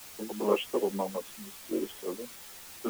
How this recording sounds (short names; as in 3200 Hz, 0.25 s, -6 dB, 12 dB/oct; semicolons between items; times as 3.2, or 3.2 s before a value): random-step tremolo; a quantiser's noise floor 8-bit, dither triangular; a shimmering, thickened sound